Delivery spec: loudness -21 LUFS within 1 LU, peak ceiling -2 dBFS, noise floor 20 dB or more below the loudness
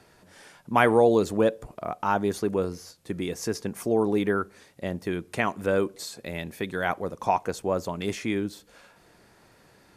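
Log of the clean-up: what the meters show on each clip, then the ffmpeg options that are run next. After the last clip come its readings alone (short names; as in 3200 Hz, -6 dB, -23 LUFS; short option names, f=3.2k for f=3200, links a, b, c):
loudness -27.0 LUFS; peak -4.5 dBFS; loudness target -21.0 LUFS
-> -af "volume=6dB,alimiter=limit=-2dB:level=0:latency=1"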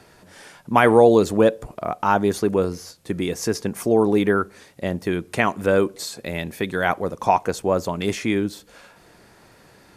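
loudness -21.0 LUFS; peak -2.0 dBFS; noise floor -52 dBFS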